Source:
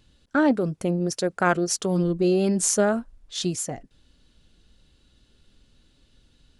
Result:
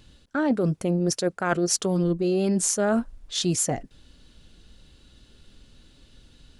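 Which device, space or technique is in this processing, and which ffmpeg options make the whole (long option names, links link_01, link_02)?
compression on the reversed sound: -af "areverse,acompressor=threshold=-26dB:ratio=12,areverse,volume=6.5dB"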